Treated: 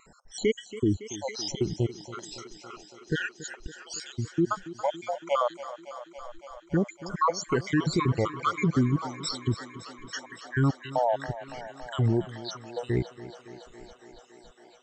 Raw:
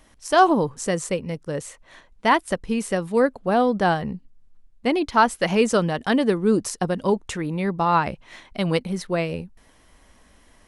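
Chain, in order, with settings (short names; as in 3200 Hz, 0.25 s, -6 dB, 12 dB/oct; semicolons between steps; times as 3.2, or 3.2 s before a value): random spectral dropouts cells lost 76%; limiter -19 dBFS, peak gain reduction 11 dB; varispeed -28%; wow and flutter 66 cents; on a send: thinning echo 0.28 s, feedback 82%, high-pass 170 Hz, level -14.5 dB; on the sum: gain +3.5 dB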